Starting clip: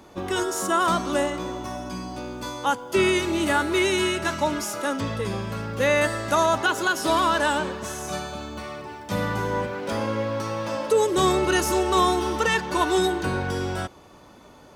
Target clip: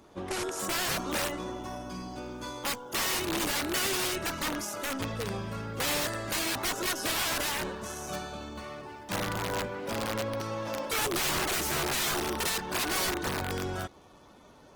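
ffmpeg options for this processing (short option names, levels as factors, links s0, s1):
-af "aeval=exprs='(mod(8.41*val(0)+1,2)-1)/8.41':c=same,volume=0.501" -ar 48000 -c:a libopus -b:a 16k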